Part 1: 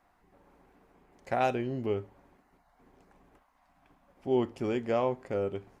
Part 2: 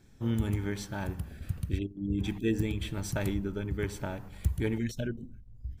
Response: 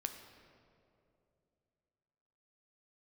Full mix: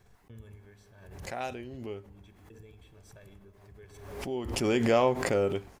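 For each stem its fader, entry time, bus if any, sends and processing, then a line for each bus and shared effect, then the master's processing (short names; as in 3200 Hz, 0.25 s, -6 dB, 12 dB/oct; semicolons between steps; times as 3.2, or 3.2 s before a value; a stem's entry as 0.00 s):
4.44 s -20 dB -> 4.66 s -8 dB, 0.00 s, no send, high shelf 2900 Hz +10.5 dB; AGC gain up to 12.5 dB
-19.5 dB, 0.00 s, send -8.5 dB, comb 1.8 ms, depth 59%; small resonant body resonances 430/1700/2600 Hz, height 7 dB; step gate "x.xxxxxxx.xx..x" 102 bpm -60 dB; auto duck -11 dB, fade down 0.65 s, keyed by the first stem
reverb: on, RT60 2.7 s, pre-delay 9 ms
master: gate with hold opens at -58 dBFS; backwards sustainer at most 50 dB/s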